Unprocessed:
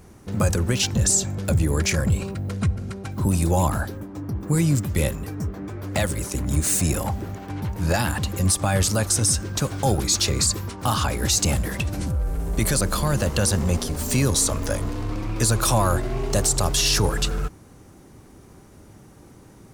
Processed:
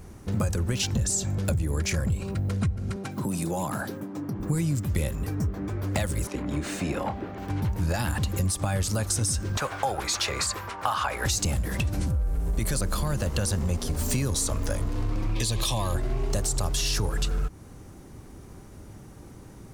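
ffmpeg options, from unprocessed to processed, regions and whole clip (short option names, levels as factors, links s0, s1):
-filter_complex "[0:a]asettb=1/sr,asplit=3[s0][s1][s2];[s0]atrim=end=2.964[s3];[s1]atrim=start=2.96:end=4.4,asetpts=PTS-STARTPTS,afade=t=in:d=0.004:c=qsin,afade=t=out:st=1.436:d=0.004:c=qsin,highpass=f=140:w=0.5412,highpass=f=140:w=1.3066,acompressor=threshold=0.0447:ratio=3:attack=3.2:release=140:knee=1:detection=peak[s4];[s2]atrim=start=4.396[s5];[s3][s4]acrossfade=d=0.004:c1=hsin:c2=qsin[s6];[s6][s5]acrossfade=d=0.004:c1=qsin:c2=hsin,asettb=1/sr,asplit=3[s7][s8][s9];[s7]atrim=end=6.274[s10];[s8]atrim=start=6.27:end=7.38,asetpts=PTS-STARTPTS,afade=t=in:d=0.004:c=qsin,afade=t=out:st=1.106:d=0.004:c=qsin,acrossover=split=200 3900:gain=0.158 1 0.0794[s11][s12][s13];[s11][s12][s13]amix=inputs=3:normalize=0,asplit=2[s14][s15];[s15]adelay=27,volume=0.282[s16];[s14][s16]amix=inputs=2:normalize=0,atrim=end_sample=48951[s17];[s9]atrim=start=7.376[s18];[s10][s17]acrossfade=d=0.004:c1=hsin:c2=qsin[s19];[s19][s18]acrossfade=d=0.004:c1=qsin:c2=hsin,asettb=1/sr,asplit=3[s20][s21][s22];[s20]atrim=end=9.574[s23];[s21]atrim=start=9.57:end=11.26,asetpts=PTS-STARTPTS,afade=t=in:d=0.004:c=qsin,afade=t=out:st=1.686:d=0.004:c=qsin,acrossover=split=580 2700:gain=0.0891 1 0.224[s24][s25][s26];[s24][s25][s26]amix=inputs=3:normalize=0,acontrast=62[s27];[s22]atrim=start=11.256[s28];[s23][s27]acrossfade=d=0.004:c1=hsin:c2=qsin[s29];[s29][s28]acrossfade=d=0.004:c1=qsin:c2=hsin,asettb=1/sr,asplit=3[s30][s31][s32];[s30]atrim=end=15.354[s33];[s31]atrim=start=15.35:end=15.95,asetpts=PTS-STARTPTS,afade=t=in:d=0.004:c=qsin,afade=t=out:st=0.596:d=0.004:c=qsin,asuperstop=centerf=1400:order=4:qfactor=3.8,equalizer=f=3400:w=1.4:g=13.5,acompressor=threshold=0.0708:ratio=2:attack=3.2:release=140:knee=1:detection=peak[s34];[s32]atrim=start=15.946[s35];[s33][s34]acrossfade=d=0.004:c1=hsin:c2=qsin[s36];[s36][s35]acrossfade=d=0.004:c1=qsin:c2=hsin,lowshelf=f=84:g=8,acompressor=threshold=0.0708:ratio=6"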